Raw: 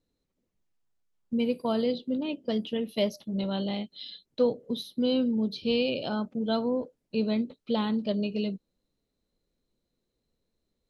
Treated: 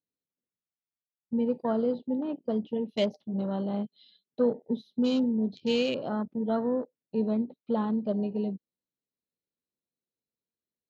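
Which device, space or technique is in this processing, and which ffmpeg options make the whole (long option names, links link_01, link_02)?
over-cleaned archive recording: -filter_complex "[0:a]asettb=1/sr,asplit=3[link_01][link_02][link_03];[link_01]atrim=end=3.734[link_04];[link_02]atrim=start=3.73:end=5.24,asetpts=PTS-STARTPTS,afade=type=in:duration=0.004:curve=qsin,afade=type=out:start_time=1.506:duration=0.004:curve=qsin,aecho=1:1:4.8:0.43,atrim=end_sample=66591[link_05];[link_03]atrim=start=5.236[link_06];[link_04][link_05]acrossfade=duration=0.004:curve1=hsin:curve2=qsin[link_07];[link_07][link_06]acrossfade=duration=0.004:curve1=qsin:curve2=hsin,highpass=110,lowpass=5600,afwtdn=0.0126"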